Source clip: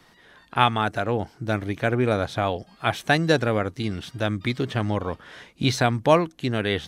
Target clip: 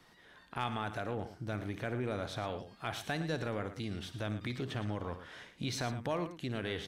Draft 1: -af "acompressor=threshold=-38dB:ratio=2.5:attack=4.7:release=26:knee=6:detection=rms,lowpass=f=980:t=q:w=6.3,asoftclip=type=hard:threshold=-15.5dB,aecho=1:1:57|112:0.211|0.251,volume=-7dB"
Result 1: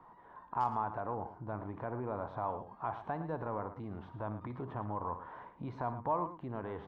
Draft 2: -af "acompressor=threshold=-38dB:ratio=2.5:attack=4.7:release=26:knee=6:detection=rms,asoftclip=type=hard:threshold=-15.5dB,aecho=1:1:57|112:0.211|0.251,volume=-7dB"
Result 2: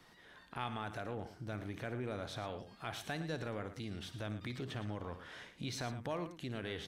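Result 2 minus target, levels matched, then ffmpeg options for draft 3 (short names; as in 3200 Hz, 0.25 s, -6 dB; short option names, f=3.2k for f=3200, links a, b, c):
compressor: peak gain reduction +4.5 dB
-af "acompressor=threshold=-30.5dB:ratio=2.5:attack=4.7:release=26:knee=6:detection=rms,asoftclip=type=hard:threshold=-15.5dB,aecho=1:1:57|112:0.211|0.251,volume=-7dB"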